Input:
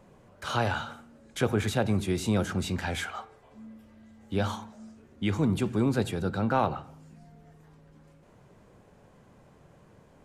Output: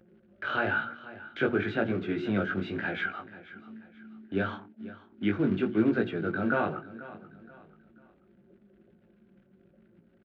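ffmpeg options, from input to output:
-af "bandreject=f=800:w=13,anlmdn=0.251,equalizer=f=350:t=o:w=0.81:g=4.5,bandreject=f=60:t=h:w=6,bandreject=f=120:t=h:w=6,bandreject=f=180:t=h:w=6,bandreject=f=240:t=h:w=6,bandreject=f=300:t=h:w=6,bandreject=f=360:t=h:w=6,acompressor=mode=upward:threshold=-35dB:ratio=2.5,flanger=delay=17:depth=4.1:speed=1,acrusher=bits=6:mode=log:mix=0:aa=0.000001,highpass=170,equalizer=f=330:t=q:w=4:g=3,equalizer=f=490:t=q:w=4:g=-4,equalizer=f=1k:t=q:w=4:g=-10,equalizer=f=1.5k:t=q:w=4:g=9,lowpass=f=3k:w=0.5412,lowpass=f=3k:w=1.3066,aecho=1:1:486|972|1458:0.141|0.0509|0.0183,volume=2dB"

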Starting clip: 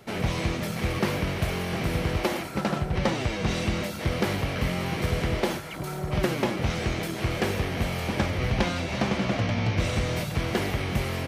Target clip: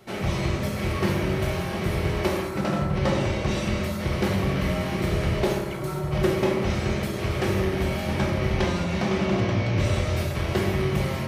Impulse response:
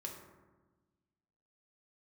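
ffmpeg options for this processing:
-filter_complex "[1:a]atrim=start_sample=2205[a];[0:a][a]afir=irnorm=-1:irlink=0,volume=3dB"

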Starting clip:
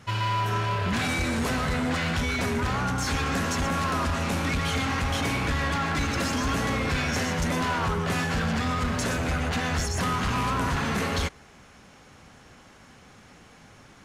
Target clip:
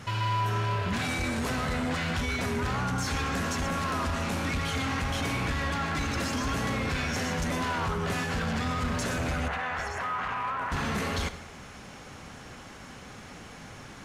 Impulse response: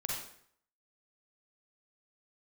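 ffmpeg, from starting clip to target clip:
-filter_complex "[0:a]asettb=1/sr,asplit=3[a][b][c];[a]atrim=end=9.484[d];[b]atrim=start=9.48:end=10.72,asetpts=PTS-STARTPTS,afade=t=in:d=0.004:c=qsin,afade=t=out:st=1.236:d=0.004:c=qsin,acrossover=split=590 2400:gain=0.126 1 0.1[e][f][g];[e][f][g]amix=inputs=3:normalize=0[h];[c]atrim=start=10.716[i];[d][h]acrossfade=d=0.004:c1=hsin:c2=qsin[j];[j][i]acrossfade=d=0.004:c1=qsin:c2=hsin,alimiter=level_in=6.5dB:limit=-24dB:level=0:latency=1:release=18,volume=-6.5dB,asplit=2[k][l];[1:a]atrim=start_sample=2205,asetrate=39690,aresample=44100[m];[l][m]afir=irnorm=-1:irlink=0,volume=-13dB[n];[k][n]amix=inputs=2:normalize=0,volume=4.5dB"

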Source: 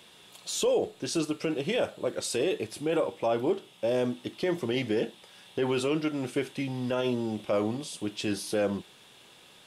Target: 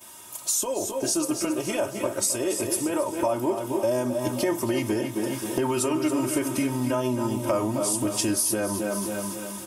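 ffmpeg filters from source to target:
-filter_complex "[0:a]aexciter=amount=9.3:drive=3.5:freq=5.4k,asplit=2[a][b];[b]adelay=263,lowpass=f=2k:p=1,volume=-8.5dB,asplit=2[c][d];[d]adelay=263,lowpass=f=2k:p=1,volume=0.37,asplit=2[e][f];[f]adelay=263,lowpass=f=2k:p=1,volume=0.37,asplit=2[g][h];[h]adelay=263,lowpass=f=2k:p=1,volume=0.37[i];[c][e][g][i]amix=inputs=4:normalize=0[j];[a][j]amix=inputs=2:normalize=0,dynaudnorm=f=660:g=7:m=11.5dB,equalizer=f=125:t=o:w=1:g=10,equalizer=f=1k:t=o:w=1:g=9,equalizer=f=4k:t=o:w=1:g=-3,equalizer=f=8k:t=o:w=1:g=-4,asplit=2[k][l];[l]aecho=0:1:278|556|834|1112|1390:0.266|0.133|0.0665|0.0333|0.0166[m];[k][m]amix=inputs=2:normalize=0,acompressor=threshold=-24dB:ratio=6,aecho=1:1:3.2:0.78,agate=range=-12dB:threshold=-49dB:ratio=16:detection=peak"

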